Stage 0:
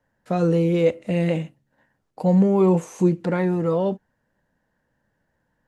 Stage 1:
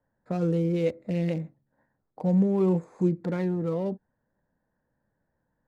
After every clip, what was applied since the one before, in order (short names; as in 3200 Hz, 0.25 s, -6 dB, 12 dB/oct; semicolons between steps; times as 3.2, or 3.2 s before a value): Wiener smoothing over 15 samples; dynamic EQ 910 Hz, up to -6 dB, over -34 dBFS, Q 0.73; gain -4.5 dB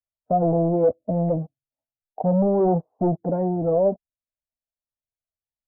per-bin expansion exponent 1.5; sample leveller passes 3; ladder low-pass 740 Hz, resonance 70%; gain +9 dB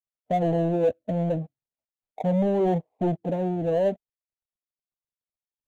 median filter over 25 samples; gain -3 dB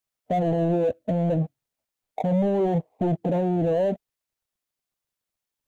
limiter -26 dBFS, peak gain reduction 11.5 dB; gain +9 dB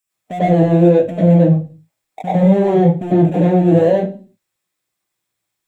reverb RT60 0.35 s, pre-delay 91 ms, DRR -6.5 dB; gain +5.5 dB